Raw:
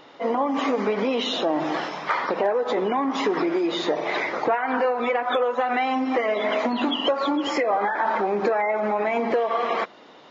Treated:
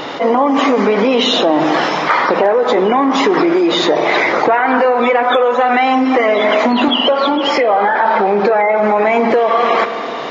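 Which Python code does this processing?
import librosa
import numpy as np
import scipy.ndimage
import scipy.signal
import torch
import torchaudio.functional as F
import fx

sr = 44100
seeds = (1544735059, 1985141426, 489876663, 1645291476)

y = fx.cabinet(x, sr, low_hz=120.0, low_slope=12, high_hz=5300.0, hz=(310.0, 1100.0, 1900.0), db=(-8, -3, -3), at=(6.88, 8.8))
y = fx.rev_spring(y, sr, rt60_s=3.1, pass_ms=(41, 54), chirp_ms=55, drr_db=16.0)
y = fx.env_flatten(y, sr, amount_pct=50)
y = y * 10.0 ** (8.5 / 20.0)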